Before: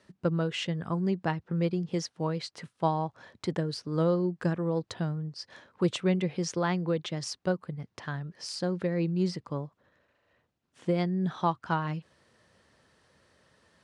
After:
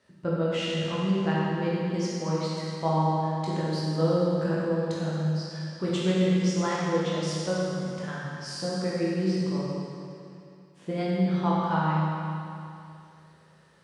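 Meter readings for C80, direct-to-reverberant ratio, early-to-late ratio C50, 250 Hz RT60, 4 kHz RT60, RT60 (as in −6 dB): −1.5 dB, −7.5 dB, −3.5 dB, 2.6 s, 2.5 s, 2.6 s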